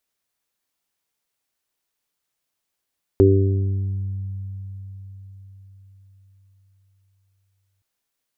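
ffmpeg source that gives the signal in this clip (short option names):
-f lavfi -i "aevalsrc='0.211*pow(10,-3*t/5)*sin(2*PI*97.1*t)+0.0422*pow(10,-3*t/3.56)*sin(2*PI*194.2*t)+0.158*pow(10,-3*t/1.32)*sin(2*PI*291.3*t)+0.316*pow(10,-3*t/1.01)*sin(2*PI*388.4*t)+0.0376*pow(10,-3*t/0.99)*sin(2*PI*485.5*t)':d=4.62:s=44100"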